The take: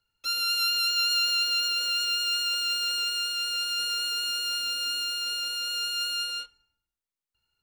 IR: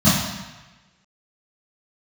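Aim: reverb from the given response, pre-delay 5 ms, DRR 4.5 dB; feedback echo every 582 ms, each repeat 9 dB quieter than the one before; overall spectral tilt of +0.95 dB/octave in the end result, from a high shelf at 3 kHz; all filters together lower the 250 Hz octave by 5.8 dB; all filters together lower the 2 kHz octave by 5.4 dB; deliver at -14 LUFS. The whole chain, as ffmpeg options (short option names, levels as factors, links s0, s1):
-filter_complex "[0:a]equalizer=f=250:t=o:g=-7,equalizer=f=2000:t=o:g=-6,highshelf=f=3000:g=-5.5,aecho=1:1:582|1164|1746|2328:0.355|0.124|0.0435|0.0152,asplit=2[s0][s1];[1:a]atrim=start_sample=2205,adelay=5[s2];[s1][s2]afir=irnorm=-1:irlink=0,volume=0.0531[s3];[s0][s3]amix=inputs=2:normalize=0,volume=5.62"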